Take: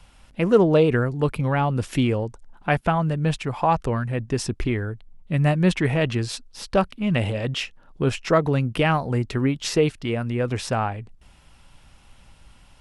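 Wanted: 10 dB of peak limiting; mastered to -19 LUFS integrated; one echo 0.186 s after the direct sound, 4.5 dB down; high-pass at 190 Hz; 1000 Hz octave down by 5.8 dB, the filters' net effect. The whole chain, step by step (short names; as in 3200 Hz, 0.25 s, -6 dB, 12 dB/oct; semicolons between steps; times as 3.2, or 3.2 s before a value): HPF 190 Hz; bell 1000 Hz -8 dB; limiter -16.5 dBFS; echo 0.186 s -4.5 dB; gain +8.5 dB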